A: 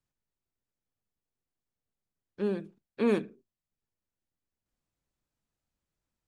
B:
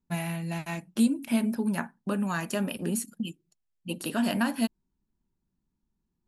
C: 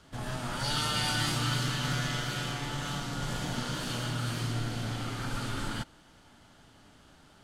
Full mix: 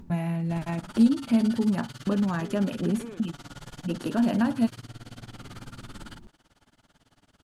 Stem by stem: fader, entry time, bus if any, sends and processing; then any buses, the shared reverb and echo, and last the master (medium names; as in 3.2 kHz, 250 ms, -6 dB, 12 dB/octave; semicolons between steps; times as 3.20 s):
-5.0 dB, 0.00 s, bus A, no send, none
-1.5 dB, 0.00 s, no bus, no send, tilt shelf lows +6 dB, about 1.1 kHz; upward compressor, threshold -24 dBFS
-2.0 dB, 0.35 s, bus A, no send, treble shelf 5.8 kHz +10.5 dB; tremolo 18 Hz, depth 97%
bus A: 0.0 dB, compression 6:1, threshold -38 dBFS, peak gain reduction 12 dB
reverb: none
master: treble shelf 5.6 kHz -8.5 dB